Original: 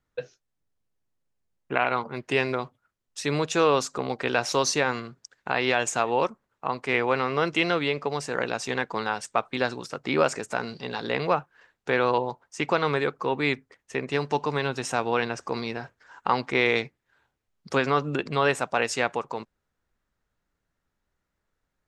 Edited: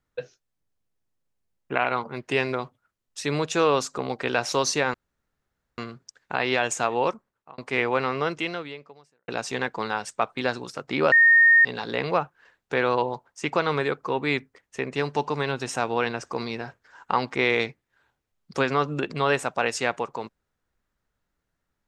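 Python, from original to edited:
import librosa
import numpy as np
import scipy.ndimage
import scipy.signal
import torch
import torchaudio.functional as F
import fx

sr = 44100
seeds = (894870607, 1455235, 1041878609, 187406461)

y = fx.edit(x, sr, fx.insert_room_tone(at_s=4.94, length_s=0.84),
    fx.fade_out_span(start_s=6.28, length_s=0.46),
    fx.fade_out_span(start_s=7.31, length_s=1.13, curve='qua'),
    fx.bleep(start_s=10.28, length_s=0.53, hz=1840.0, db=-12.0), tone=tone)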